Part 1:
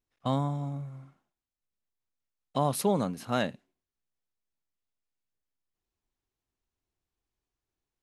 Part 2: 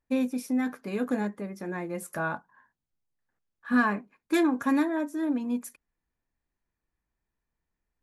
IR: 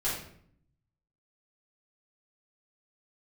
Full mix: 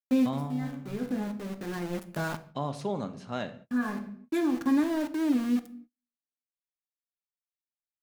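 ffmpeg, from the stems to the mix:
-filter_complex "[0:a]lowpass=f=7.4k:w=0.5412,lowpass=f=7.4k:w=1.3066,deesser=0.9,volume=-7dB,asplit=3[a][b][c];[b]volume=-15dB[d];[1:a]equalizer=f=110:w=0.4:g=11.5,aeval=exprs='val(0)*gte(abs(val(0)),0.0316)':c=same,volume=-5dB,asplit=2[e][f];[f]volume=-18dB[g];[c]apad=whole_len=354105[h];[e][h]sidechaincompress=threshold=-47dB:ratio=3:attack=44:release=1340[i];[2:a]atrim=start_sample=2205[j];[d][g]amix=inputs=2:normalize=0[k];[k][j]afir=irnorm=-1:irlink=0[l];[a][i][l]amix=inputs=3:normalize=0,agate=range=-32dB:threshold=-49dB:ratio=16:detection=peak"

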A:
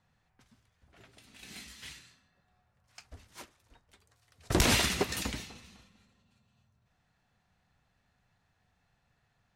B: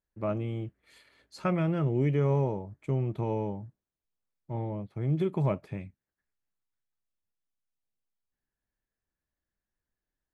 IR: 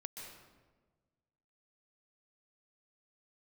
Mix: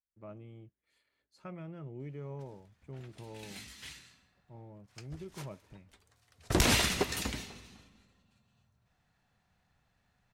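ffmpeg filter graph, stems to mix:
-filter_complex "[0:a]adelay=2000,volume=-2dB,asplit=2[a][b];[b]volume=-10dB[c];[1:a]volume=-17dB[d];[2:a]atrim=start_sample=2205[e];[c][e]afir=irnorm=-1:irlink=0[f];[a][d][f]amix=inputs=3:normalize=0"

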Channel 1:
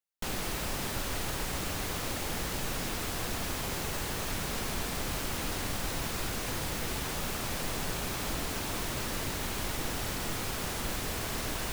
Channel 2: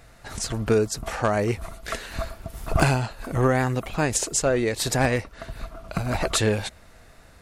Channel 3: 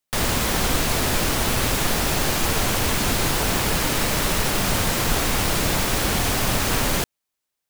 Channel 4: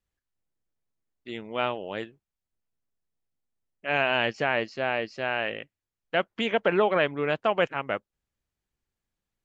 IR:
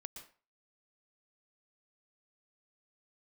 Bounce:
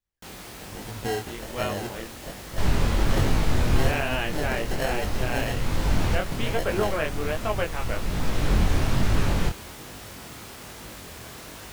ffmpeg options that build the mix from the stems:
-filter_complex "[0:a]highpass=51,volume=-3dB[a];[1:a]acrusher=samples=37:mix=1:aa=0.000001,adelay=350,volume=-6dB[b];[2:a]aemphasis=mode=reproduction:type=bsi,flanger=delay=3.1:depth=9.7:regen=-65:speed=1.8:shape=sinusoidal,aeval=exprs='0.251*(abs(mod(val(0)/0.251+3,4)-2)-1)':c=same,adelay=2450,volume=1dB[c];[3:a]volume=-1dB,asplit=2[d][e];[e]apad=whole_len=447206[f];[c][f]sidechaincompress=threshold=-30dB:ratio=8:attack=24:release=728[g];[a][b][g][d]amix=inputs=4:normalize=0,flanger=delay=19:depth=7.4:speed=1.2"

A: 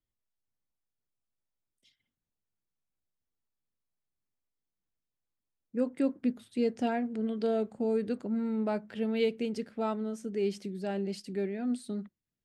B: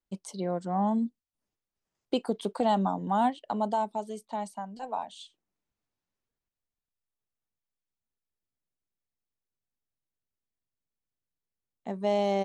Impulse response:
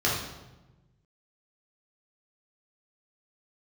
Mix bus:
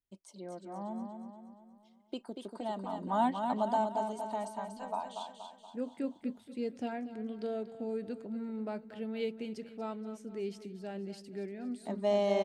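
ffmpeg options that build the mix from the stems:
-filter_complex "[0:a]volume=-7.5dB,asplit=2[a][b];[b]volume=-14dB[c];[1:a]aecho=1:1:3.2:0.41,volume=-4dB,afade=t=in:st=2.86:d=0.24:silence=0.354813,asplit=2[d][e];[e]volume=-6dB[f];[c][f]amix=inputs=2:normalize=0,aecho=0:1:237|474|711|948|1185|1422|1659:1|0.49|0.24|0.118|0.0576|0.0282|0.0138[g];[a][d][g]amix=inputs=3:normalize=0"

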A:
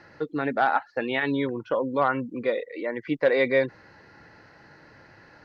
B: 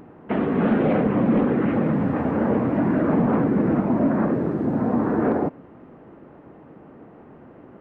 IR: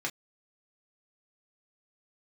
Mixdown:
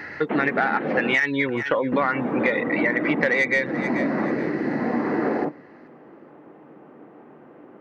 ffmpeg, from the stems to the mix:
-filter_complex "[0:a]equalizer=f=2k:w=1.8:g=14.5,acontrast=33,volume=2dB,asplit=2[a][b];[b]volume=-20.5dB[c];[1:a]highpass=200,volume=-2dB,asplit=3[d][e][f];[d]atrim=end=1.15,asetpts=PTS-STARTPTS,afade=t=out:st=1.146:d=0.004:c=hsin[g];[e]atrim=start=1.15:end=1.92,asetpts=PTS-STARTPTS,volume=0[h];[f]atrim=start=1.92,asetpts=PTS-STARTPTS,afade=t=in:d=0.004:c=hsin[i];[g][h][i]concat=n=3:v=0:a=1,asplit=2[j][k];[k]volume=-12dB[l];[2:a]atrim=start_sample=2205[m];[l][m]afir=irnorm=-1:irlink=0[n];[c]aecho=0:1:430|860|1290|1720:1|0.27|0.0729|0.0197[o];[a][j][n][o]amix=inputs=4:normalize=0,acompressor=threshold=-18dB:ratio=8"

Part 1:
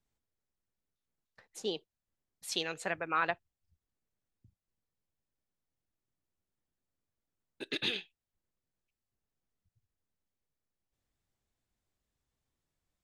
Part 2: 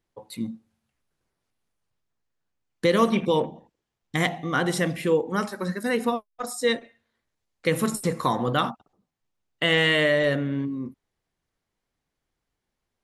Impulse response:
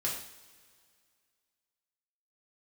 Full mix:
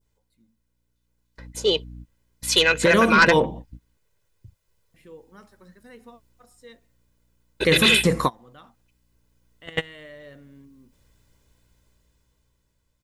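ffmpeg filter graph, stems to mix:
-filter_complex "[0:a]adynamicequalizer=threshold=0.00447:dfrequency=2000:dqfactor=0.84:tfrequency=2000:tqfactor=0.84:attack=5:release=100:ratio=0.375:range=4:mode=boostabove:tftype=bell,aecho=1:1:2:0.79,aeval=exprs='0.316*sin(PI/2*2.24*val(0)/0.316)':c=same,volume=-4dB,asplit=2[a][b];[1:a]aeval=exprs='val(0)+0.00794*(sin(2*PI*60*n/s)+sin(2*PI*2*60*n/s)/2+sin(2*PI*3*60*n/s)/3+sin(2*PI*4*60*n/s)/4+sin(2*PI*5*60*n/s)/5)':c=same,volume=-1.5dB,asplit=3[c][d][e];[c]atrim=end=3.97,asetpts=PTS-STARTPTS,afade=t=out:st=3.966:d=0.004:c=hsin[f];[d]atrim=start=3.97:end=4.94,asetpts=PTS-STARTPTS,volume=0[g];[e]atrim=start=4.94,asetpts=PTS-STARTPTS,afade=t=in:d=0.004:c=hsin[h];[f][g][h]concat=n=3:v=0:a=1[i];[b]apad=whole_len=574982[j];[i][j]sidechaingate=range=-32dB:threshold=-60dB:ratio=16:detection=peak[k];[a][k]amix=inputs=2:normalize=0,dynaudnorm=f=330:g=9:m=12dB,alimiter=limit=-7.5dB:level=0:latency=1:release=44"

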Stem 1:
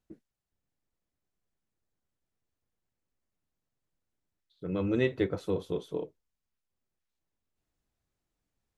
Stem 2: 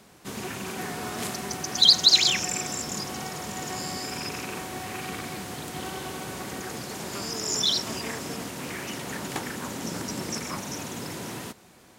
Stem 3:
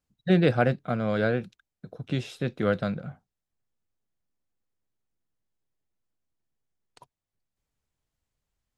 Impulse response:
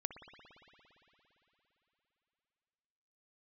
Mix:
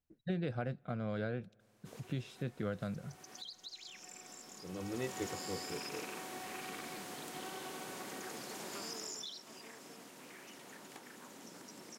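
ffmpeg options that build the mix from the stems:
-filter_complex "[0:a]volume=-12.5dB[a];[1:a]highpass=230,acompressor=threshold=-31dB:ratio=5,adelay=1600,volume=-8.5dB,afade=t=in:st=4.76:d=0.43:silence=0.354813,afade=t=out:st=8.89:d=0.58:silence=0.375837[b];[2:a]acompressor=threshold=-23dB:ratio=5,lowshelf=f=150:g=6.5,volume=-12dB,asplit=3[c][d][e];[d]volume=-24dB[f];[e]apad=whole_len=599198[g];[b][g]sidechaincompress=threshold=-45dB:ratio=8:attack=9.9:release=489[h];[3:a]atrim=start_sample=2205[i];[f][i]afir=irnorm=-1:irlink=0[j];[a][h][c][j]amix=inputs=4:normalize=0"

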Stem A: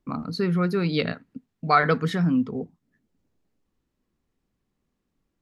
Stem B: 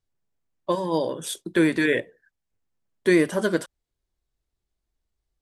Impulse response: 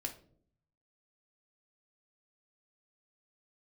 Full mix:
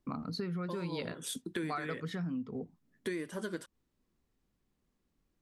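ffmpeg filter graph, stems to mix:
-filter_complex "[0:a]volume=-3dB[a];[1:a]equalizer=f=670:t=o:w=0.77:g=-7,volume=-5dB[b];[a][b]amix=inputs=2:normalize=0,acompressor=threshold=-35dB:ratio=6"

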